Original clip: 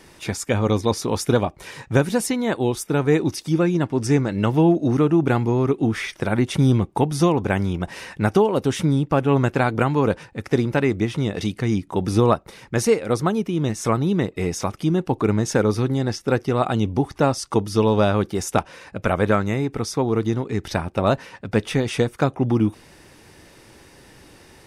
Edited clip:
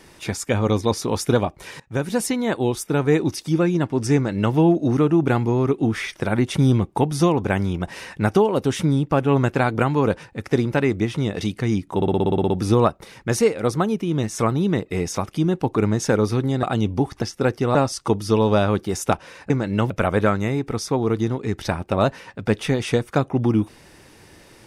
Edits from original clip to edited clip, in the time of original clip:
1.8–2.21 fade in linear, from -22 dB
4.15–4.55 copy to 18.96
11.96 stutter 0.06 s, 10 plays
16.09–16.62 move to 17.21

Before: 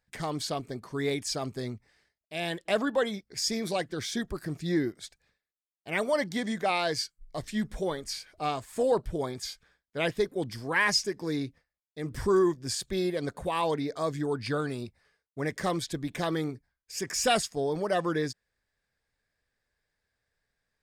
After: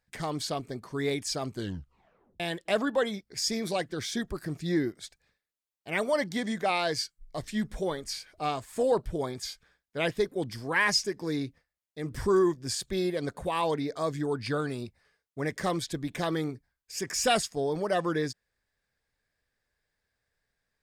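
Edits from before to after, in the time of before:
1.51 tape stop 0.89 s

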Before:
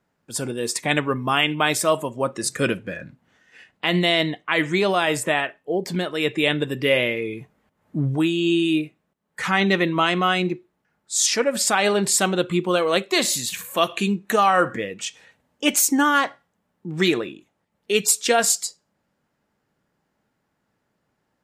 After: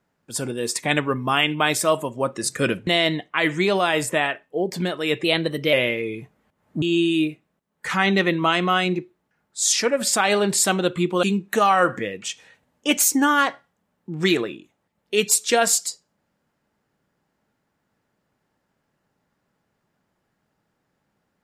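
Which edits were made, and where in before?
2.87–4.01 cut
6.38–6.92 speed 110%
8.01–8.36 cut
12.77–14 cut

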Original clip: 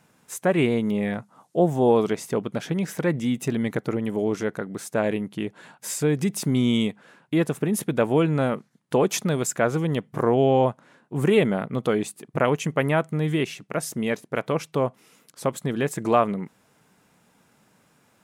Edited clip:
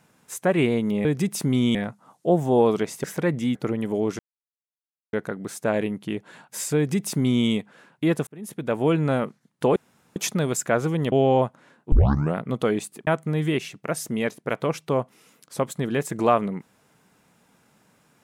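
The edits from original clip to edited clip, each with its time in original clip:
2.34–2.85 cut
3.36–3.79 cut
4.43 insert silence 0.94 s
6.07–6.77 copy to 1.05
7.57–8.24 fade in
9.06 insert room tone 0.40 s
10.02–10.36 cut
11.16 tape start 0.44 s
12.31–12.93 cut

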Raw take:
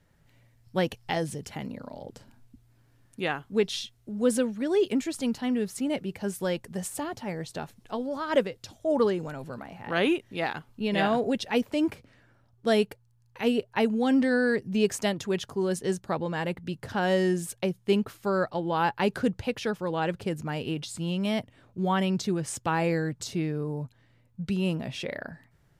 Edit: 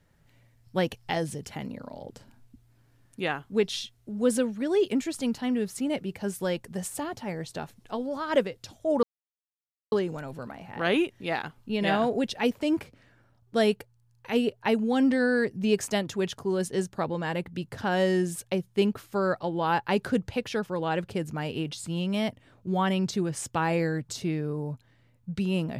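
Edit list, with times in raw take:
9.03 insert silence 0.89 s

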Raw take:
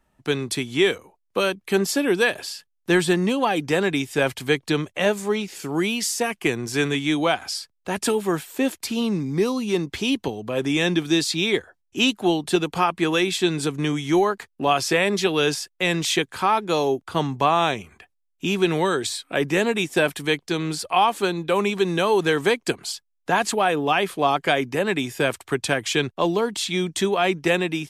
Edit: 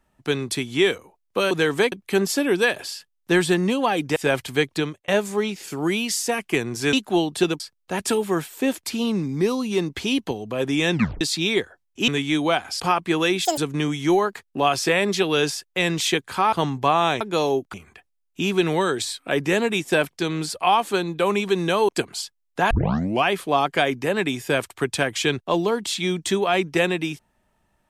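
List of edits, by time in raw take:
3.75–4.08 cut
4.67–5 fade out
6.85–7.57 swap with 12.05–12.72
10.9 tape stop 0.28 s
13.37–13.62 speed 198%
16.57–17.1 move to 17.78
20.15–20.4 cut
22.18–22.59 move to 1.51
23.41 tape start 0.54 s

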